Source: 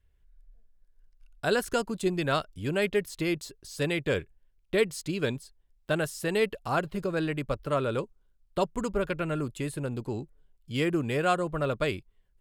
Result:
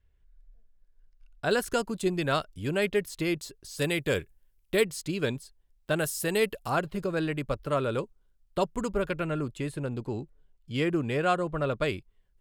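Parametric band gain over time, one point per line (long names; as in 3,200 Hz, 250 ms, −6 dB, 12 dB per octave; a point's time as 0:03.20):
parametric band 15,000 Hz 1.3 octaves
−10.5 dB
from 0:01.51 +1.5 dB
from 0:03.79 +13 dB
from 0:04.83 +1.5 dB
from 0:05.99 +11 dB
from 0:06.70 +0.5 dB
from 0:09.26 −8.5 dB
from 0:11.82 −2.5 dB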